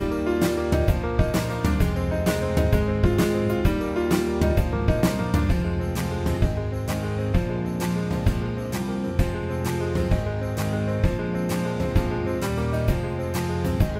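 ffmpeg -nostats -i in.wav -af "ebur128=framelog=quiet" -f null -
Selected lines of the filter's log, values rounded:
Integrated loudness:
  I:         -24.4 LUFS
  Threshold: -34.4 LUFS
Loudness range:
  LRA:         3.2 LU
  Threshold: -44.4 LUFS
  LRA low:   -26.0 LUFS
  LRA high:  -22.8 LUFS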